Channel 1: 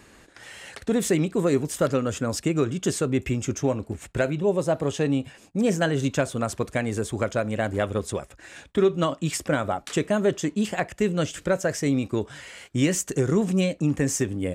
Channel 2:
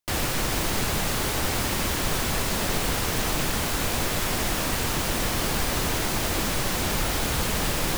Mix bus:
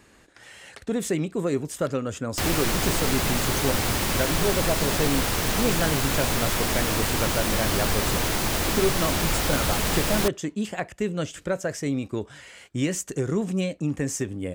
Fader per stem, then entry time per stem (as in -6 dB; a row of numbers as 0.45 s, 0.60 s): -3.5 dB, +1.0 dB; 0.00 s, 2.30 s